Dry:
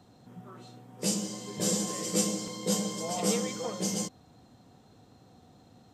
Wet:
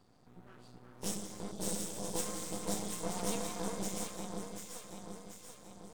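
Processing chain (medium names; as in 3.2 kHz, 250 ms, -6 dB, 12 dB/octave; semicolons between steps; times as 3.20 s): on a send: echo whose repeats swap between lows and highs 368 ms, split 1.4 kHz, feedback 73%, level -3 dB; on the sum: spectral selection erased 1.52–2.22 s, 670–2500 Hz; half-wave rectifier; formant shift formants +2 st; trim -5 dB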